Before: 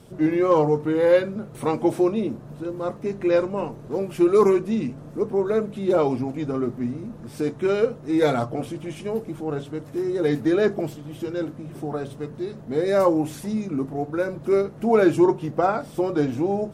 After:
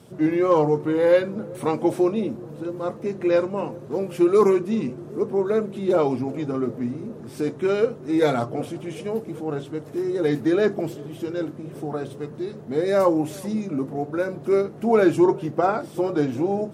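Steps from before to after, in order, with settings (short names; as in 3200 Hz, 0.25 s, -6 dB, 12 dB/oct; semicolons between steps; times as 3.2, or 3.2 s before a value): HPF 92 Hz; on a send: narrowing echo 0.383 s, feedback 82%, band-pass 380 Hz, level -21.5 dB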